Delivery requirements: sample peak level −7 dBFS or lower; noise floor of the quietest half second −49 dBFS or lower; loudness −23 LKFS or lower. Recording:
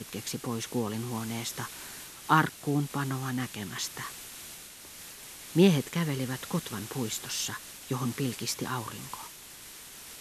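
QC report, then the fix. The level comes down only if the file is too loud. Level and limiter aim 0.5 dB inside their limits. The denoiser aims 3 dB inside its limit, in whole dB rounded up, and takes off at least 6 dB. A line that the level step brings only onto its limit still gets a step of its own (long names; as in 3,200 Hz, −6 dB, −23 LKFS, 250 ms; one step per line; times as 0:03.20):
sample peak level −8.5 dBFS: in spec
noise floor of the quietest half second −48 dBFS: out of spec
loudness −31.5 LKFS: in spec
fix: broadband denoise 6 dB, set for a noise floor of −48 dBFS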